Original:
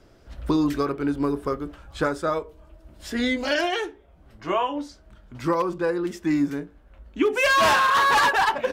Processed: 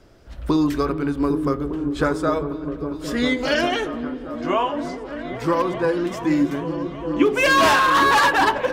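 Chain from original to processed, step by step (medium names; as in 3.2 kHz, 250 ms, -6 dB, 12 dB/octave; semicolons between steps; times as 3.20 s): delay with an opening low-pass 403 ms, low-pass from 200 Hz, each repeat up 1 oct, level -3 dB; spring tank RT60 2.3 s, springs 58 ms, chirp 25 ms, DRR 17 dB; trim +2.5 dB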